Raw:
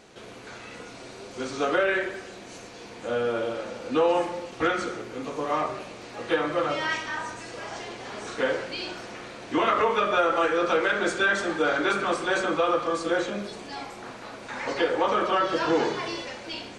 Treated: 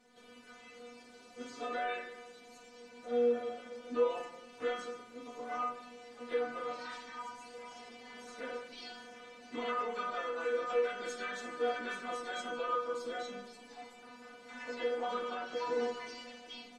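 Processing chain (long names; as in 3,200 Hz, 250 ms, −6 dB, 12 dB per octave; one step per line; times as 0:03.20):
pitch-shifted copies added −4 semitones −12 dB, +4 semitones −10 dB
stiff-string resonator 240 Hz, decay 0.32 s, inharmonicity 0.002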